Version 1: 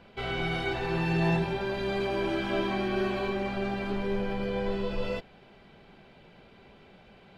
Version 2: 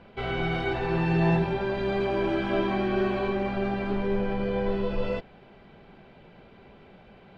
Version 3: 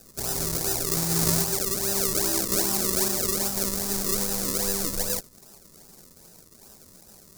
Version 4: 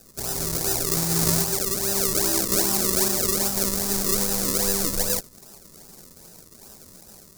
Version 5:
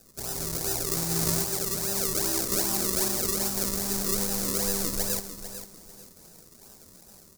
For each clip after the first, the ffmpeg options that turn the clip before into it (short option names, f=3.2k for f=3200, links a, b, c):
-af "aemphasis=mode=reproduction:type=75kf,volume=3.5dB"
-af "acrusher=samples=39:mix=1:aa=0.000001:lfo=1:lforange=39:lforate=2.5,aexciter=amount=5.7:drive=7.9:freq=4.4k,volume=-4.5dB"
-af "dynaudnorm=f=380:g=3:m=4dB"
-af "aecho=1:1:448|896|1344:0.282|0.0733|0.0191,volume=-5dB"